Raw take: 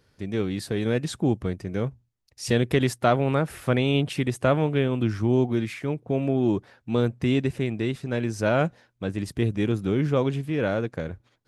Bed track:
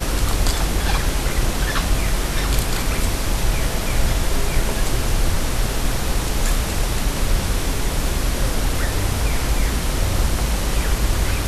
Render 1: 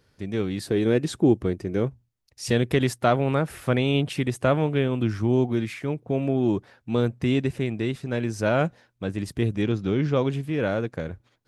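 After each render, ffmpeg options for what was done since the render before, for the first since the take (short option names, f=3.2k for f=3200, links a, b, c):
-filter_complex "[0:a]asettb=1/sr,asplit=3[a][b][c];[a]atrim=end=0.644[d];[b]atrim=start=0.64:end=1.88,asetpts=PTS-STARTPTS,afade=t=in:d=0.004:c=qsin,afade=t=out:st=1.236:d=0.004:c=qsin,equalizer=f=350:t=o:w=0.77:g=7.5[e];[c]atrim=start=1.876[f];[d][e]acrossfade=d=0.004:c1=hsin:c2=qsin[g];[g][f]acrossfade=d=0.004:c1=qsin:c2=hsin,asettb=1/sr,asplit=3[h][i][j];[h]atrim=end=9.624[k];[i]atrim=start=9.62:end=10.25,asetpts=PTS-STARTPTS,afade=t=in:d=0.004:c=qsin,afade=t=out:st=0.626:d=0.004:c=qsin,highshelf=f=7.5k:t=q:w=1.5:g=-12.5[l];[j]atrim=start=10.246[m];[k][l]acrossfade=d=0.004:c1=hsin:c2=qsin[n];[n][m]acrossfade=d=0.004:c1=qsin:c2=hsin"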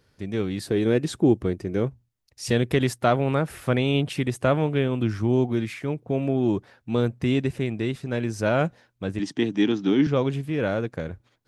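-filter_complex "[0:a]asettb=1/sr,asplit=3[a][b][c];[a]atrim=end=9.194[d];[b]atrim=start=9.19:end=10.07,asetpts=PTS-STARTPTS,afade=t=in:d=0.004:c=qsin,afade=t=out:st=0.876:d=0.004:c=qsin,highpass=f=160:w=0.5412,highpass=f=160:w=1.3066,equalizer=f=290:t=q:w=4:g=10,equalizer=f=520:t=q:w=4:g=-5,equalizer=f=860:t=q:w=4:g=7,equalizer=f=1.8k:t=q:w=4:g=5,equalizer=f=3.2k:t=q:w=4:g=8,equalizer=f=5.8k:t=q:w=4:g=7,lowpass=f=7.9k:w=0.5412,lowpass=f=7.9k:w=1.3066[e];[c]atrim=start=10.066[f];[d][e]acrossfade=d=0.004:c1=hsin:c2=qsin[g];[g][f]acrossfade=d=0.004:c1=qsin:c2=hsin"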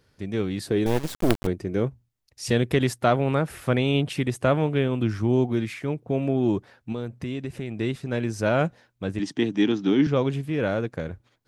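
-filter_complex "[0:a]asettb=1/sr,asplit=3[a][b][c];[a]atrim=end=0.864[d];[b]atrim=start=0.86:end=1.47,asetpts=PTS-STARTPTS,afade=t=in:d=0.004:c=qsin,afade=t=out:st=0.606:d=0.004:c=qsin,acrusher=bits=3:dc=4:mix=0:aa=0.000001[e];[c]atrim=start=1.466[f];[d][e]acrossfade=d=0.004:c1=hsin:c2=qsin[g];[g][f]acrossfade=d=0.004:c1=qsin:c2=hsin,asettb=1/sr,asplit=3[h][i][j];[h]atrim=end=6.924[k];[i]atrim=start=6.92:end=7.78,asetpts=PTS-STARTPTS,afade=t=in:d=0.004:c=qsin,afade=t=out:st=0.856:d=0.004:c=qsin,acompressor=threshold=-28dB:ratio=4:attack=3.2:release=140:knee=1:detection=peak[l];[j]atrim=start=7.776[m];[k][l]acrossfade=d=0.004:c1=hsin:c2=qsin[n];[n][m]acrossfade=d=0.004:c1=qsin:c2=hsin"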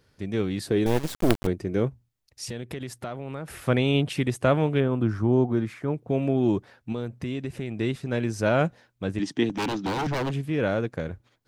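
-filter_complex "[0:a]asettb=1/sr,asplit=3[a][b][c];[a]atrim=end=2.444[d];[b]atrim=start=2.44:end=3.48,asetpts=PTS-STARTPTS,afade=t=in:d=0.004:c=qsin,afade=t=out:st=1.036:d=0.004:c=qsin,acompressor=threshold=-33dB:ratio=4:attack=3.2:release=140:knee=1:detection=peak[e];[c]atrim=start=3.476[f];[d][e]acrossfade=d=0.004:c1=hsin:c2=qsin[g];[g][f]acrossfade=d=0.004:c1=qsin:c2=hsin,asettb=1/sr,asplit=3[h][i][j];[h]atrim=end=4.804[k];[i]atrim=start=4.8:end=5.94,asetpts=PTS-STARTPTS,afade=t=in:d=0.004:c=qsin,afade=t=out:st=1.136:d=0.004:c=qsin,highshelf=f=1.8k:t=q:w=1.5:g=-7.5[l];[j]atrim=start=5.936[m];[k][l]acrossfade=d=0.004:c1=hsin:c2=qsin[n];[n][m]acrossfade=d=0.004:c1=qsin:c2=hsin,asettb=1/sr,asplit=3[o][p][q];[o]atrim=end=9.494[r];[p]atrim=start=9.49:end=10.34,asetpts=PTS-STARTPTS,afade=t=in:d=0.004:c=qsin,afade=t=out:st=0.846:d=0.004:c=qsin,aeval=exprs='0.0794*(abs(mod(val(0)/0.0794+3,4)-2)-1)':c=same[s];[q]atrim=start=10.336[t];[r][s]acrossfade=d=0.004:c1=hsin:c2=qsin[u];[u][t]acrossfade=d=0.004:c1=qsin:c2=hsin"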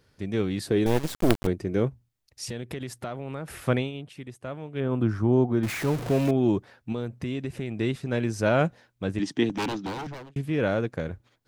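-filter_complex "[0:a]asettb=1/sr,asplit=3[a][b][c];[a]atrim=end=5.634[d];[b]atrim=start=5.63:end=6.31,asetpts=PTS-STARTPTS,afade=t=in:d=0.004:c=qsin,afade=t=out:st=0.676:d=0.004:c=qsin,aeval=exprs='val(0)+0.5*0.0376*sgn(val(0))':c=same[e];[c]atrim=start=6.306[f];[d][e]acrossfade=d=0.004:c1=hsin:c2=qsin[g];[g][f]acrossfade=d=0.004:c1=qsin:c2=hsin,asplit=4[h][i][j][k];[h]atrim=end=3.91,asetpts=PTS-STARTPTS,afade=t=out:st=3.62:d=0.29:c=qsin:silence=0.177828[l];[i]atrim=start=3.91:end=4.73,asetpts=PTS-STARTPTS,volume=-15dB[m];[j]atrim=start=4.73:end=10.36,asetpts=PTS-STARTPTS,afade=t=in:d=0.29:c=qsin:silence=0.177828,afade=t=out:st=4.83:d=0.8[n];[k]atrim=start=10.36,asetpts=PTS-STARTPTS,afade=t=in:d=0.004:c=hsin[o];[l][m][n][o]concat=n=4:v=0:a=1"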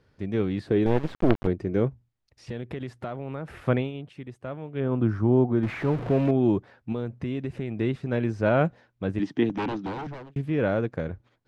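-filter_complex "[0:a]acrossover=split=3800[a][b];[b]acompressor=threshold=-48dB:ratio=4:attack=1:release=60[c];[a][c]amix=inputs=2:normalize=0,aemphasis=mode=reproduction:type=75fm"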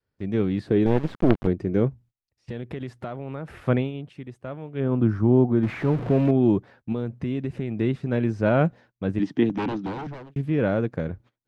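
-af "adynamicequalizer=threshold=0.0224:dfrequency=190:dqfactor=0.78:tfrequency=190:tqfactor=0.78:attack=5:release=100:ratio=0.375:range=2:mode=boostabove:tftype=bell,agate=range=-17dB:threshold=-49dB:ratio=16:detection=peak"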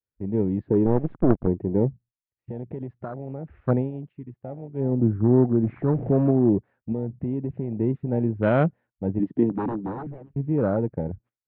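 -af "lowpass=f=2.6k:w=0.5412,lowpass=f=2.6k:w=1.3066,afwtdn=0.0316"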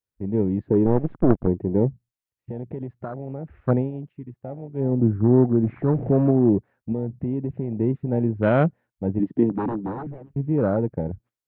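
-af "volume=1.5dB"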